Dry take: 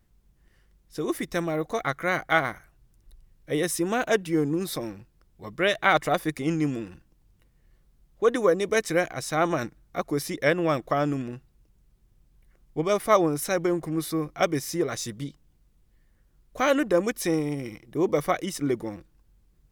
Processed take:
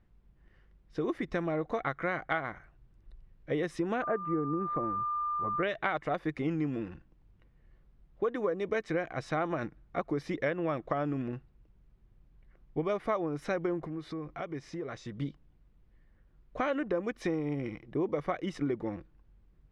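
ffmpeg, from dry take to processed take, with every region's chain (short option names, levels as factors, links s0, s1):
-filter_complex "[0:a]asettb=1/sr,asplit=3[s0][s1][s2];[s0]atrim=end=4.024[s3];[s1]atrim=start=4.02:end=5.63,asetpts=PTS-STARTPTS,afade=t=in:d=0.004:c=qsin,afade=t=out:st=1.606:d=0.004:c=qsin,lowpass=f=1600:w=0.5412,lowpass=f=1600:w=1.3066,aeval=exprs='val(0)+0.0355*sin(2*PI*1200*n/s)':c=same[s4];[s2]atrim=start=5.626[s5];[s3][s4]acrossfade=d=0.004:c1=hsin:c2=qsin[s6];[s6][s5]acrossfade=d=0.004:c1=qsin:c2=hsin,asettb=1/sr,asplit=3[s7][s8][s9];[s7]atrim=end=13.864[s10];[s8]atrim=start=13.86:end=15.16,asetpts=PTS-STARTPTS,afade=t=in:d=0.004:c=qsin,afade=t=out:st=1.296:d=0.004:c=qsin,lowpass=8900,acompressor=threshold=0.0158:ratio=4:attack=3.2:release=140:knee=1:detection=peak[s11];[s9]atrim=start=15.156[s12];[s10][s11]acrossfade=d=0.004:c1=hsin:c2=qsin[s13];[s13][s12]acrossfade=d=0.004:c1=qsin:c2=hsin,lowpass=2500,acompressor=threshold=0.0398:ratio=6"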